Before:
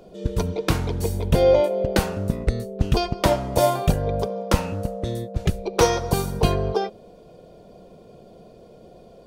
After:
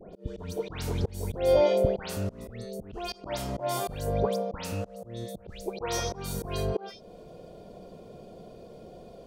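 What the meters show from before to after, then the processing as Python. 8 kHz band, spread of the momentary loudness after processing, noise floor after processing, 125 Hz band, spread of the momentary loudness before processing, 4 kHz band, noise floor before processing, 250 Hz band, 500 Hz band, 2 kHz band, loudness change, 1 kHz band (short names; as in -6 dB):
-7.0 dB, 22 LU, -50 dBFS, -10.5 dB, 8 LU, -8.0 dB, -48 dBFS, -9.5 dB, -6.5 dB, -10.0 dB, -8.0 dB, -9.5 dB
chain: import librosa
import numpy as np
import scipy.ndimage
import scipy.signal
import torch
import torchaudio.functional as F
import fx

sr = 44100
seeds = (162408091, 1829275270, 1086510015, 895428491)

y = fx.dispersion(x, sr, late='highs', ms=140.0, hz=2200.0)
y = fx.auto_swell(y, sr, attack_ms=391.0)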